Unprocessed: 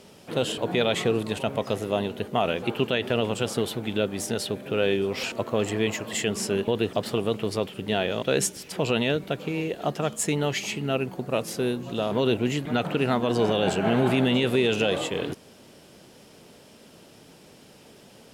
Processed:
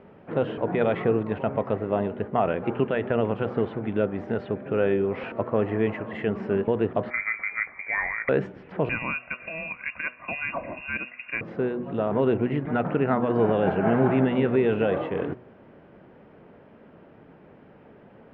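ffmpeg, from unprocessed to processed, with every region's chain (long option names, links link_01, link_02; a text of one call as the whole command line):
ffmpeg -i in.wav -filter_complex "[0:a]asettb=1/sr,asplit=3[link_01][link_02][link_03];[link_01]atrim=end=7.104[link_04];[link_02]atrim=start=7.1:end=8.29,asetpts=PTS-STARTPTS,afade=type=in:duration=0.004:curve=qsin,afade=type=out:start_time=1.186:duration=0.004:curve=qsin,lowshelf=frequency=69:gain=10,asplit=2[link_05][link_06];[link_06]adelay=19,volume=-10.5dB[link_07];[link_05][link_07]amix=inputs=2:normalize=0,atrim=end_sample=52479,lowpass=frequency=2100:width_type=q:width=0.5098,lowpass=frequency=2100:width_type=q:width=0.6013,lowpass=frequency=2100:width_type=q:width=0.9,lowpass=frequency=2100:width_type=q:width=2.563,afreqshift=-2500[link_08];[link_03]atrim=start=8.286[link_09];[link_04][link_08]acrossfade=duration=0.004:curve1=hsin:curve2=qsin[link_10];[link_10][link_09]acrossfade=duration=0.004:curve1=qsin:curve2=hsin,asettb=1/sr,asplit=3[link_11][link_12][link_13];[link_11]atrim=end=8.894[link_14];[link_12]atrim=start=8.89:end=11.41,asetpts=PTS-STARTPTS,afade=type=in:duration=0.004:curve=qsin,afade=type=out:start_time=2.516:duration=0.004:curve=qsin,aecho=1:1:2.2:0.51,atrim=end_sample=111132,lowpass=frequency=2500:width_type=q:width=0.5098,lowpass=frequency=2500:width_type=q:width=0.6013,lowpass=frequency=2500:width_type=q:width=0.9,lowpass=frequency=2500:width_type=q:width=2.563,afreqshift=-2900[link_15];[link_13]atrim=start=11.406[link_16];[link_14][link_15]acrossfade=duration=0.004:curve1=hsin:curve2=qsin[link_17];[link_17][link_16]acrossfade=duration=0.004:curve1=qsin:curve2=hsin,lowpass=frequency=1900:width=0.5412,lowpass=frequency=1900:width=1.3066,bandreject=frequency=123.1:width_type=h:width=4,bandreject=frequency=246.2:width_type=h:width=4,bandreject=frequency=369.3:width_type=h:width=4,bandreject=frequency=492.4:width_type=h:width=4,bandreject=frequency=615.5:width_type=h:width=4,bandreject=frequency=738.6:width_type=h:width=4,bandreject=frequency=861.7:width_type=h:width=4,bandreject=frequency=984.8:width_type=h:width=4,bandreject=frequency=1107.9:width_type=h:width=4,bandreject=frequency=1231:width_type=h:width=4,bandreject=frequency=1354.1:width_type=h:width=4,volume=1.5dB" out.wav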